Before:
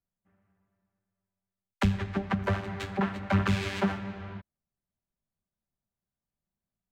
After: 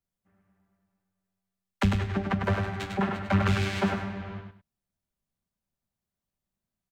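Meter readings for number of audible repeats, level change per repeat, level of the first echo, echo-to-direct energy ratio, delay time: 2, -12.0 dB, -5.0 dB, -4.5 dB, 0.1 s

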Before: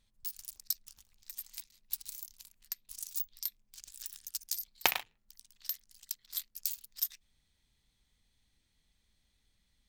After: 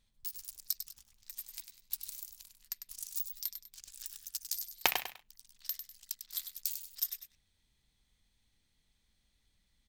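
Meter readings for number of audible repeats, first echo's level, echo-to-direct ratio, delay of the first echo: 2, -8.5 dB, -8.0 dB, 99 ms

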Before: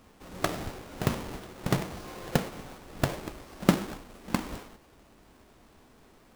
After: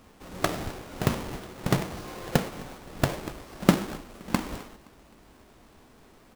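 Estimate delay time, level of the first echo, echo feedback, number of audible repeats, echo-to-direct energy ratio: 0.26 s, -23.5 dB, 43%, 2, -22.5 dB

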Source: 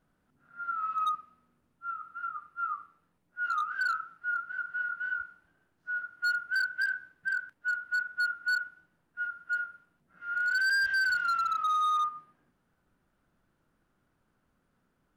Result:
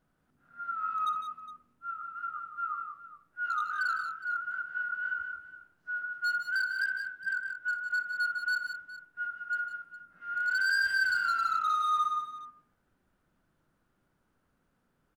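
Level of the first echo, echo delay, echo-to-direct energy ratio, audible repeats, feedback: -17.5 dB, 60 ms, -5.0 dB, 3, no steady repeat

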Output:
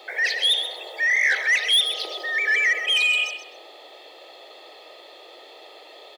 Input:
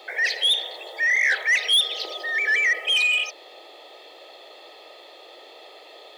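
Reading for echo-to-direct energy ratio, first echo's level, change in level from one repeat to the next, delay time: -10.0 dB, -10.0 dB, -13.5 dB, 0.13 s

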